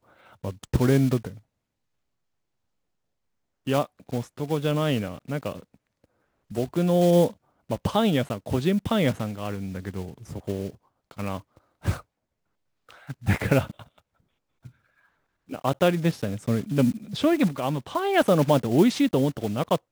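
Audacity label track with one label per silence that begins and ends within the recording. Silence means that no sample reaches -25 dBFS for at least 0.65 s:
1.280000	3.680000	silence
5.520000	6.570000	silence
11.940000	13.100000	silence
13.700000	15.530000	silence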